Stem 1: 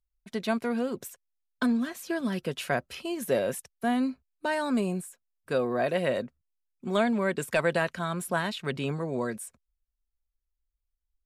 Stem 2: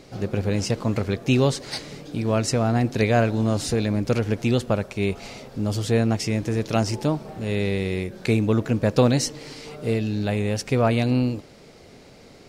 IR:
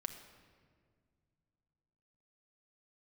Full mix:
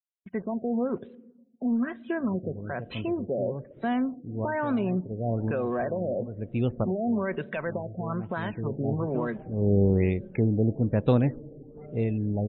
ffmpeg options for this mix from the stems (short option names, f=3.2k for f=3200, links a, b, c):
-filter_complex "[0:a]alimiter=limit=-23.5dB:level=0:latency=1:release=104,acrusher=bits=7:mix=0:aa=0.000001,volume=0.5dB,asplit=3[a][b][c];[b]volume=-5dB[d];[1:a]lowshelf=f=360:g=6,adelay=2100,volume=-0.5dB,afade=t=in:st=8.21:d=0.73:silence=0.398107,afade=t=out:st=10.01:d=0.3:silence=0.446684[e];[c]apad=whole_len=643032[f];[e][f]sidechaincompress=threshold=-44dB:ratio=4:attack=10:release=390[g];[2:a]atrim=start_sample=2205[h];[d][h]afir=irnorm=-1:irlink=0[i];[a][g][i]amix=inputs=3:normalize=0,afftdn=nr=17:nf=-43,adynamicsmooth=sensitivity=6.5:basefreq=5.1k,afftfilt=real='re*lt(b*sr/1024,780*pow(4100/780,0.5+0.5*sin(2*PI*1.1*pts/sr)))':imag='im*lt(b*sr/1024,780*pow(4100/780,0.5+0.5*sin(2*PI*1.1*pts/sr)))':win_size=1024:overlap=0.75"